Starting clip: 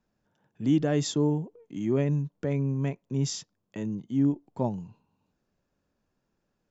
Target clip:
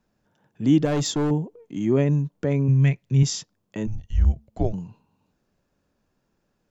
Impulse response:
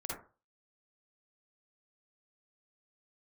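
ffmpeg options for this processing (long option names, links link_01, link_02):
-filter_complex "[0:a]asettb=1/sr,asplit=3[link_01][link_02][link_03];[link_01]atrim=end=0.854[link_04];[link_02]atrim=start=0.85:end=1.31,asetpts=PTS-STARTPTS,afade=type=in:duration=0.004:curve=qsin,afade=type=out:start_time=0.456:duration=0.004:curve=qsin,asoftclip=type=hard:threshold=-25dB[link_05];[link_03]atrim=start=1.306[link_06];[link_04][link_05]acrossfade=duration=0.004:curve1=hsin:curve2=qsin[link_07];[link_07][link_06]acrossfade=duration=0.004:curve1=qsin:curve2=hsin,asettb=1/sr,asplit=3[link_08][link_09][link_10];[link_08]atrim=end=2.684[link_11];[link_09]atrim=start=2.68:end=3.23,asetpts=PTS-STARTPTS,afade=type=in:duration=0.004:curve=qsin,afade=type=out:start_time=0.546:duration=0.004:curve=qsin,equalizer=frequency=125:width_type=o:width=1:gain=9,equalizer=frequency=250:width_type=o:width=1:gain=-5,equalizer=frequency=500:width_type=o:width=1:gain=-4,equalizer=frequency=1000:width_type=o:width=1:gain=-8,equalizer=frequency=2000:width_type=o:width=1:gain=8,equalizer=frequency=4000:width_type=o:width=1:gain=4[link_12];[link_10]atrim=start=3.226[link_13];[link_11][link_12]acrossfade=duration=0.004:curve1=hsin:curve2=qsin[link_14];[link_14][link_13]acrossfade=duration=0.004:curve1=qsin:curve2=hsin,asplit=3[link_15][link_16][link_17];[link_15]afade=type=out:start_time=3.86:duration=0.02[link_18];[link_16]afreqshift=-220,afade=type=in:start_time=3.86:duration=0.02,afade=type=out:start_time=4.72:duration=0.02[link_19];[link_17]afade=type=in:start_time=4.72:duration=0.02[link_20];[link_18][link_19][link_20]amix=inputs=3:normalize=0,volume=5.5dB"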